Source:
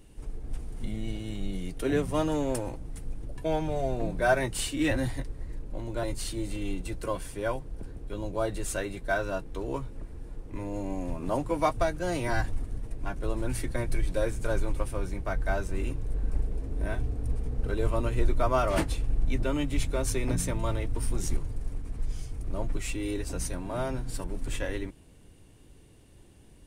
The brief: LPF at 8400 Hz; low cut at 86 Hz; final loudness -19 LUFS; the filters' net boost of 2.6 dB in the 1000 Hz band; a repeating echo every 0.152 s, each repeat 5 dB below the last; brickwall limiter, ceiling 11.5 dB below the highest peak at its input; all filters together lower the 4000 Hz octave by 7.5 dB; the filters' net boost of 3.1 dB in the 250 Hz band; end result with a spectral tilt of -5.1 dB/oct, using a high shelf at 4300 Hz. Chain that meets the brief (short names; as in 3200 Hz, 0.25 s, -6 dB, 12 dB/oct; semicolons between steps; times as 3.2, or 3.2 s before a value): HPF 86 Hz; LPF 8400 Hz; bell 250 Hz +4 dB; bell 1000 Hz +4 dB; bell 4000 Hz -6.5 dB; high shelf 4300 Hz -7 dB; limiter -23 dBFS; feedback echo 0.152 s, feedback 56%, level -5 dB; gain +14 dB